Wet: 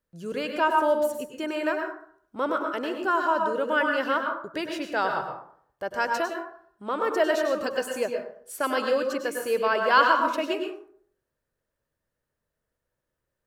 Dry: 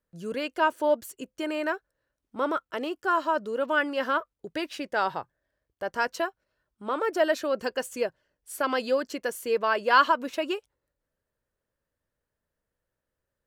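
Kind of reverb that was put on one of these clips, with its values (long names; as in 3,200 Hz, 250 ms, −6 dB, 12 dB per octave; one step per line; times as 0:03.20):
dense smooth reverb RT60 0.59 s, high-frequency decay 0.5×, pre-delay 90 ms, DRR 3 dB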